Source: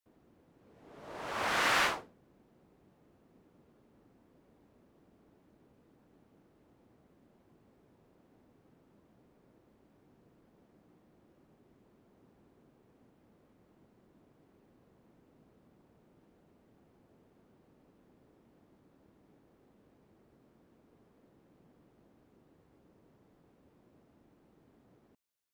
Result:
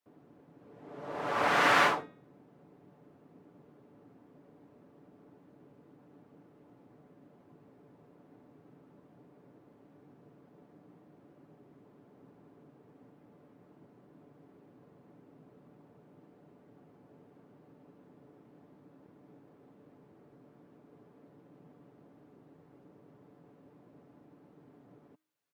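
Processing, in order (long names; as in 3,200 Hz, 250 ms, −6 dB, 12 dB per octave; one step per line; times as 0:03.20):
high-pass filter 120 Hz 12 dB per octave
high-shelf EQ 2,500 Hz −11.5 dB
comb filter 6.9 ms, depth 41%
hum removal 313.4 Hz, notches 12
level +7 dB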